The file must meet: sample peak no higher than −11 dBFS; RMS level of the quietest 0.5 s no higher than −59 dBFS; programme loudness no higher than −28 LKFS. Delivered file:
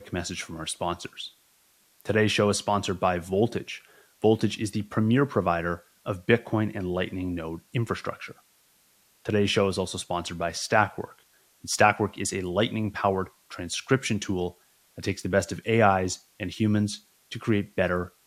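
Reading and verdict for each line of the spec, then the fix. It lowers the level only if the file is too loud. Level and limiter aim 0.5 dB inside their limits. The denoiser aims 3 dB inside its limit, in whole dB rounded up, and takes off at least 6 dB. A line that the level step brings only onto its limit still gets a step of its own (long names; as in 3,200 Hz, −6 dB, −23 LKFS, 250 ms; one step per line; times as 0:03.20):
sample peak −3.5 dBFS: out of spec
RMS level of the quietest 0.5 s −63 dBFS: in spec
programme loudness −26.5 LKFS: out of spec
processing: level −2 dB
brickwall limiter −11.5 dBFS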